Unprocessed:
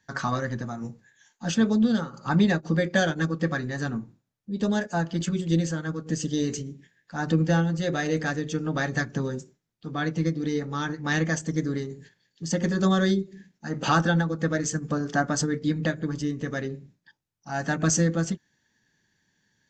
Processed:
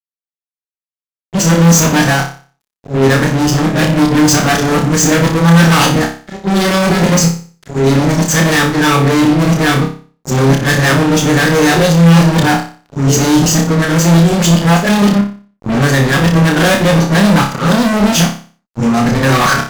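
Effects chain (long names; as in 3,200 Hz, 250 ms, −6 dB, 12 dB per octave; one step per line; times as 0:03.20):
played backwards from end to start
fuzz pedal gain 37 dB, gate −44 dBFS
flutter between parallel walls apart 5.1 metres, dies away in 0.4 s
level +3 dB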